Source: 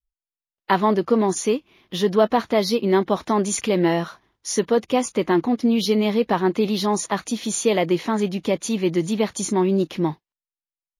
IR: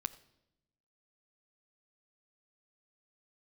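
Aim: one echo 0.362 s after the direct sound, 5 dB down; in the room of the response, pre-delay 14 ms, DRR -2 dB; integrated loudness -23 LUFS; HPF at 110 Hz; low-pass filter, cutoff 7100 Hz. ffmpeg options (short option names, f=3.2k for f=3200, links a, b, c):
-filter_complex "[0:a]highpass=110,lowpass=7.1k,aecho=1:1:362:0.562,asplit=2[a][b];[1:a]atrim=start_sample=2205,adelay=14[c];[b][c]afir=irnorm=-1:irlink=0,volume=3dB[d];[a][d]amix=inputs=2:normalize=0,volume=-6.5dB"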